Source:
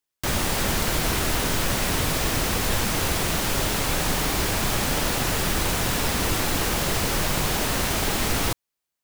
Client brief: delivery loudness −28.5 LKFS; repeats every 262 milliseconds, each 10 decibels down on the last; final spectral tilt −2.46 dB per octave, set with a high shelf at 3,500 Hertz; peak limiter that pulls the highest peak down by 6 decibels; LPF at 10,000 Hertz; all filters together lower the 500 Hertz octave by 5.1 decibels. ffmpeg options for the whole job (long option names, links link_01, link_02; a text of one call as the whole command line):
ffmpeg -i in.wav -af "lowpass=10000,equalizer=frequency=500:width_type=o:gain=-7,highshelf=frequency=3500:gain=8,alimiter=limit=-15.5dB:level=0:latency=1,aecho=1:1:262|524|786|1048:0.316|0.101|0.0324|0.0104,volume=-5dB" out.wav